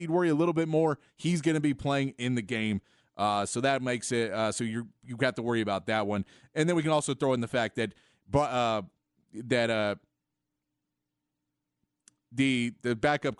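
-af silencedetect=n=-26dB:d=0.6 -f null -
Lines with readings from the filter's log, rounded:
silence_start: 8.79
silence_end: 9.51 | silence_duration: 0.72
silence_start: 9.93
silence_end: 12.39 | silence_duration: 2.45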